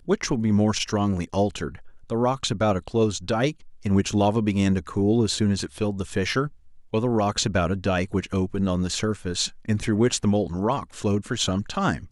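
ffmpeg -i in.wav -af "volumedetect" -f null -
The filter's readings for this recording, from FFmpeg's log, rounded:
mean_volume: -23.9 dB
max_volume: -9.5 dB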